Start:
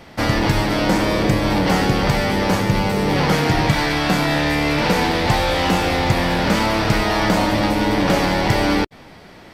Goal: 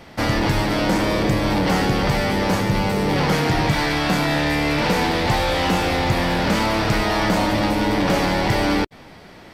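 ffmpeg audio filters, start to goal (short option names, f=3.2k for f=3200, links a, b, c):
-af "acontrast=76,volume=-7.5dB"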